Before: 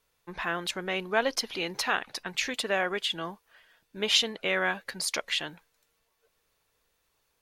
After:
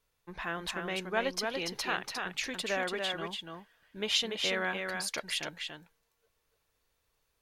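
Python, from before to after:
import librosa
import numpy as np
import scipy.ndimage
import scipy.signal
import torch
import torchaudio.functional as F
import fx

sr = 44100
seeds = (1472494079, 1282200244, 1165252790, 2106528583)

y = fx.low_shelf(x, sr, hz=140.0, db=6.5)
y = y + 10.0 ** (-4.5 / 20.0) * np.pad(y, (int(288 * sr / 1000.0), 0))[:len(y)]
y = F.gain(torch.from_numpy(y), -5.5).numpy()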